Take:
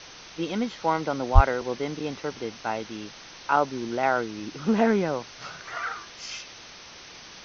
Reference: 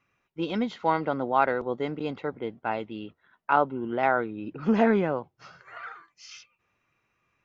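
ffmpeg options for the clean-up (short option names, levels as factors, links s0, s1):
-filter_complex "[0:a]asplit=3[s0][s1][s2];[s0]afade=t=out:st=1.34:d=0.02[s3];[s1]highpass=f=140:w=0.5412,highpass=f=140:w=1.3066,afade=t=in:st=1.34:d=0.02,afade=t=out:st=1.46:d=0.02[s4];[s2]afade=t=in:st=1.46:d=0.02[s5];[s3][s4][s5]amix=inputs=3:normalize=0,afwtdn=0.01,asetnsamples=n=441:p=0,asendcmd='5.34 volume volume -8.5dB',volume=1"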